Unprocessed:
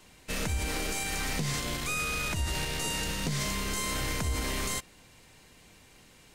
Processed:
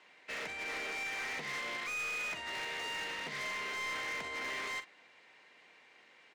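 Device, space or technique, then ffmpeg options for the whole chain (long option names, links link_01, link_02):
megaphone: -filter_complex "[0:a]highpass=490,lowpass=3200,equalizer=frequency=2000:width_type=o:width=0.52:gain=6.5,asoftclip=type=hard:threshold=-33.5dB,asplit=2[link_01][link_02];[link_02]adelay=43,volume=-11dB[link_03];[link_01][link_03]amix=inputs=2:normalize=0,volume=-3dB"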